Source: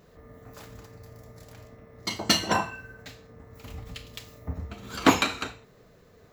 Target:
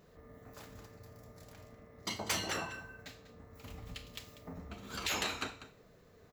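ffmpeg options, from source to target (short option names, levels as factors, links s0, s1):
-af "afftfilt=real='re*lt(hypot(re,im),0.158)':imag='im*lt(hypot(re,im),0.158)':win_size=1024:overlap=0.75,bandreject=f=60:t=h:w=6,bandreject=f=120:t=h:w=6,aecho=1:1:194:0.188,volume=0.531"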